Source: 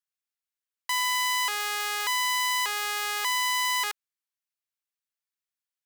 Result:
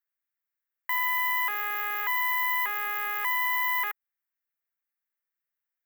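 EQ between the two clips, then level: FFT filter 220 Hz 0 dB, 860 Hz +6 dB, 1.9 kHz +14 dB, 4.4 kHz -15 dB, 6.6 kHz -12 dB, 9.5 kHz -7 dB, 15 kHz +15 dB; dynamic bell 1.8 kHz, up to -4 dB, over -32 dBFS, Q 1.3; -7.5 dB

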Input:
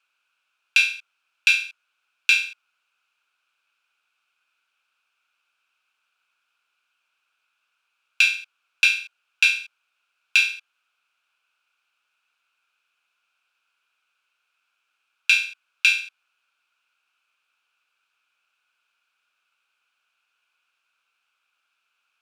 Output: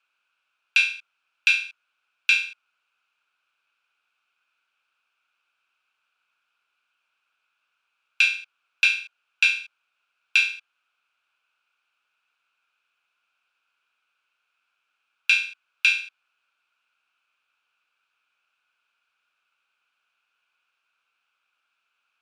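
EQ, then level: brick-wall FIR low-pass 12 kHz; treble shelf 5.8 kHz -9.5 dB; 0.0 dB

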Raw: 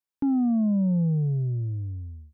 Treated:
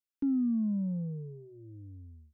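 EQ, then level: static phaser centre 300 Hz, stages 4; -5.0 dB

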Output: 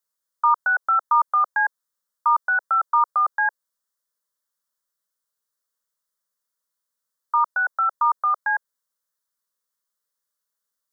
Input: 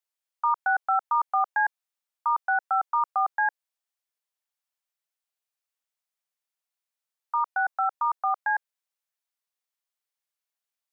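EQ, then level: static phaser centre 500 Hz, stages 8; +7.5 dB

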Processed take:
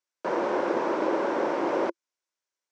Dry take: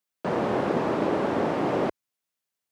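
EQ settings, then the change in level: cabinet simulation 270–7700 Hz, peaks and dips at 340 Hz +9 dB, 540 Hz +8 dB, 970 Hz +9 dB, 1.5 kHz +7 dB, 2.2 kHz +4 dB, 5.7 kHz +5 dB; treble shelf 4.3 kHz +6.5 dB; -6.5 dB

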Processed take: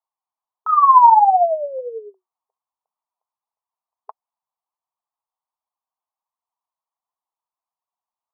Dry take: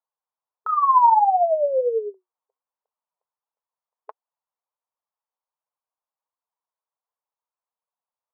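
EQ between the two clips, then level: dynamic bell 1.3 kHz, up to +4 dB, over -32 dBFS, Q 2.3; high-order bell 910 Hz +11.5 dB 1.1 oct; -7.5 dB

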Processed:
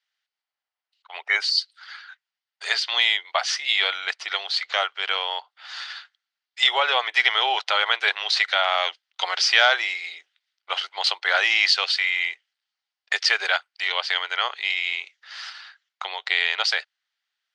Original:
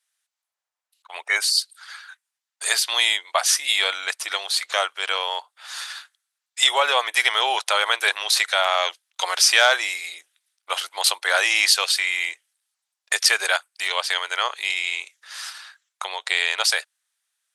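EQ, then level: cabinet simulation 250–5400 Hz, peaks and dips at 400 Hz +4 dB, 770 Hz +5 dB, 1.4 kHz +4 dB, 2 kHz +6 dB, 3 kHz +6 dB, 4.6 kHz +5 dB; -5.0 dB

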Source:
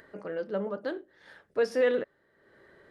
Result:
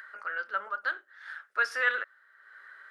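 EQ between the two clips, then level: resonant high-pass 1.4 kHz, resonance Q 5.9; +1.5 dB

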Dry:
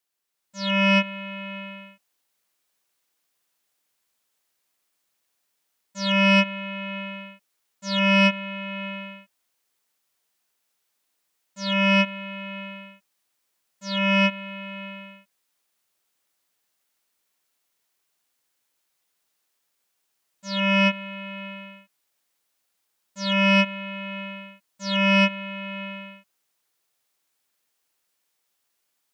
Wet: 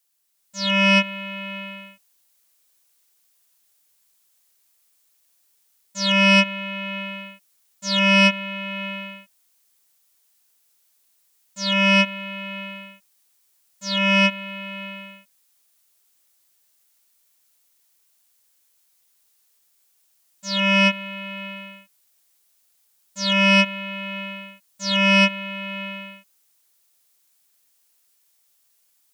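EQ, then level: treble shelf 4.2 kHz +11.5 dB; +1.0 dB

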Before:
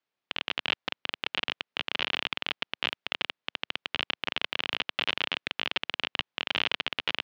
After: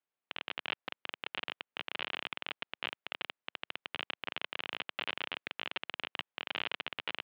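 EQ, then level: distance through air 260 m; bass shelf 200 Hz -9 dB; -4.5 dB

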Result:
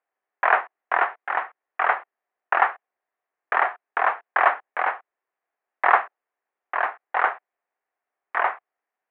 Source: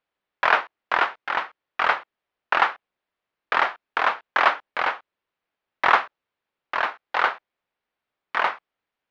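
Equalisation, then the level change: cabinet simulation 340–2400 Hz, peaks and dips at 400 Hz +4 dB, 730 Hz +9 dB, 1.1 kHz +3 dB, 1.8 kHz +5 dB; -3.5 dB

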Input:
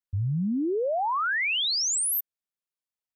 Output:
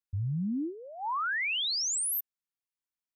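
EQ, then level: high-order bell 530 Hz -14.5 dB 1.1 oct; -4.5 dB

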